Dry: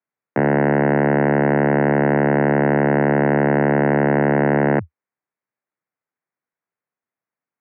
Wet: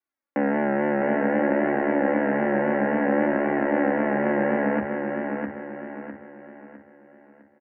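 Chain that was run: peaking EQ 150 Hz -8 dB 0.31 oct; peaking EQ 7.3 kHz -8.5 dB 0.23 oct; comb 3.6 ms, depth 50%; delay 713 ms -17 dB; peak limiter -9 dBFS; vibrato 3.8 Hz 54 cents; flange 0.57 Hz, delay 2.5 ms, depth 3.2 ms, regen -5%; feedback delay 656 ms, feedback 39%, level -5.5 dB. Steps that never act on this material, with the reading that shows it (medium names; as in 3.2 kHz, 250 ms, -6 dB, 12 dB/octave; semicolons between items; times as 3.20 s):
peaking EQ 7.3 kHz: input has nothing above 2.2 kHz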